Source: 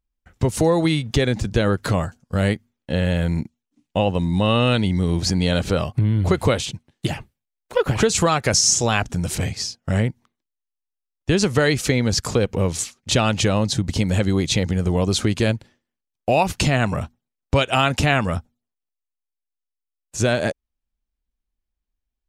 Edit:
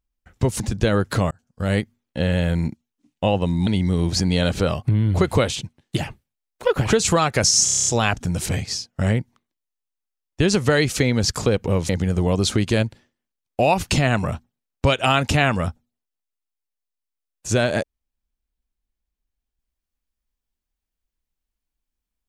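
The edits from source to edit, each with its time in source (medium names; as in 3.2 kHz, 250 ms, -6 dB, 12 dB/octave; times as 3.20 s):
0.60–1.33 s: delete
2.04–2.52 s: fade in
4.40–4.77 s: delete
8.75 s: stutter 0.03 s, 8 plays
12.78–14.58 s: delete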